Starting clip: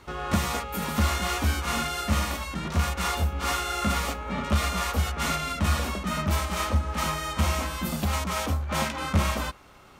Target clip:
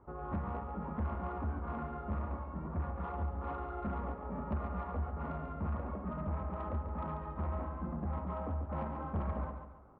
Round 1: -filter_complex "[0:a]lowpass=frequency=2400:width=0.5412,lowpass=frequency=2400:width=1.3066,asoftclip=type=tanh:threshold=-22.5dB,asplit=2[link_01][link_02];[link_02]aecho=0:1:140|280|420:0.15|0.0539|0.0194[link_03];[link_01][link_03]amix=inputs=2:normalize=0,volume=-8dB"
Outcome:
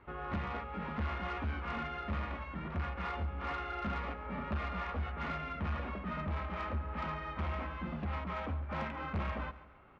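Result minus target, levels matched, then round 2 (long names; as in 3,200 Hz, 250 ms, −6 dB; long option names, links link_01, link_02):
2,000 Hz band +10.5 dB; echo-to-direct −9.5 dB
-filter_complex "[0:a]lowpass=frequency=1100:width=0.5412,lowpass=frequency=1100:width=1.3066,asoftclip=type=tanh:threshold=-22.5dB,asplit=2[link_01][link_02];[link_02]aecho=0:1:140|280|420|560:0.447|0.161|0.0579|0.0208[link_03];[link_01][link_03]amix=inputs=2:normalize=0,volume=-8dB"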